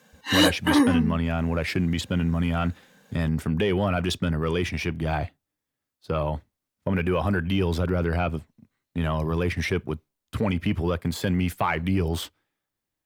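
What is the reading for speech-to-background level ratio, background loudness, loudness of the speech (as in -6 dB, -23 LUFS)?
-4.5 dB, -22.0 LUFS, -26.5 LUFS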